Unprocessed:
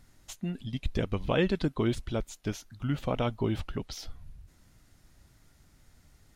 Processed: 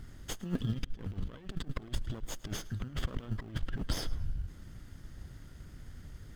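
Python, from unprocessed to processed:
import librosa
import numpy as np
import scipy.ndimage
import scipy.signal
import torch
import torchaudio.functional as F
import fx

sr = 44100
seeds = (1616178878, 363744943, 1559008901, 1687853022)

p1 = fx.lower_of_two(x, sr, delay_ms=0.61)
p2 = fx.low_shelf(p1, sr, hz=190.0, db=3.0)
p3 = fx.over_compress(p2, sr, threshold_db=-37.0, ratio=-0.5)
p4 = fx.sample_hold(p3, sr, seeds[0], rate_hz=1500.0, jitter_pct=0)
p5 = p3 + (p4 * 10.0 ** (-9.0 / 20.0))
p6 = fx.high_shelf(p5, sr, hz=5100.0, db=-7.5)
p7 = p6 + fx.echo_feedback(p6, sr, ms=108, feedback_pct=38, wet_db=-21.0, dry=0)
y = p7 * 10.0 ** (1.0 / 20.0)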